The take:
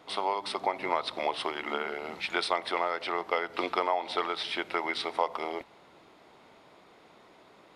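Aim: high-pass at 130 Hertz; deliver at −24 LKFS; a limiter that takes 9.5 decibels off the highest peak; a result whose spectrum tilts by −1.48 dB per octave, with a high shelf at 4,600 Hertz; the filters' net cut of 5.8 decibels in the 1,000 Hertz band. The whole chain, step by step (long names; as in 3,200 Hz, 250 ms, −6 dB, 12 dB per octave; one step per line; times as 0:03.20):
high-pass filter 130 Hz
parametric band 1,000 Hz −8 dB
high-shelf EQ 4,600 Hz +8.5 dB
level +11 dB
brickwall limiter −11.5 dBFS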